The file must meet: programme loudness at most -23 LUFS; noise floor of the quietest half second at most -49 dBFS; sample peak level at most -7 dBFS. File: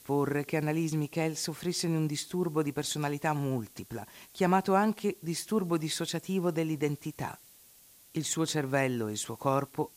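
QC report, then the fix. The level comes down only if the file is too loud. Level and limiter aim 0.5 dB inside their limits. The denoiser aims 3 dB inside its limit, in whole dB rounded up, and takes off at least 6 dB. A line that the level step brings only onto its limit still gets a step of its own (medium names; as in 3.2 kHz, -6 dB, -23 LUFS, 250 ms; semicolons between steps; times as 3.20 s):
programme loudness -31.0 LUFS: pass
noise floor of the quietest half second -58 dBFS: pass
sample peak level -13.5 dBFS: pass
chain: none needed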